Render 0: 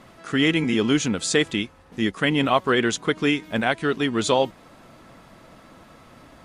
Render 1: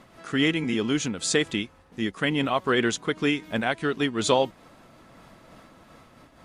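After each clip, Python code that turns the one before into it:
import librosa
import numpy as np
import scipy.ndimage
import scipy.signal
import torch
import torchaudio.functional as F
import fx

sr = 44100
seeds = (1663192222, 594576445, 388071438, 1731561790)

y = fx.am_noise(x, sr, seeds[0], hz=5.7, depth_pct=65)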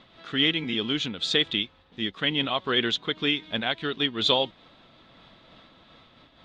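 y = fx.lowpass_res(x, sr, hz=3600.0, q=5.5)
y = y * librosa.db_to_amplitude(-4.5)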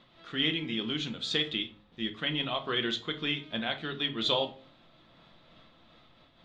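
y = fx.comb_fb(x, sr, f0_hz=620.0, decay_s=0.55, harmonics='all', damping=0.0, mix_pct=60)
y = fx.room_shoebox(y, sr, seeds[1], volume_m3=220.0, walls='furnished', distance_m=0.84)
y = y * librosa.db_to_amplitude(1.0)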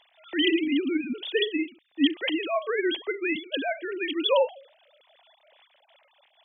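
y = fx.sine_speech(x, sr)
y = fx.peak_eq(y, sr, hz=1300.0, db=-13.0, octaves=0.4)
y = y * librosa.db_to_amplitude(6.5)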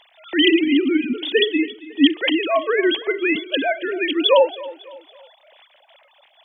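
y = fx.echo_feedback(x, sr, ms=276, feedback_pct=41, wet_db=-18.5)
y = y * librosa.db_to_amplitude(8.0)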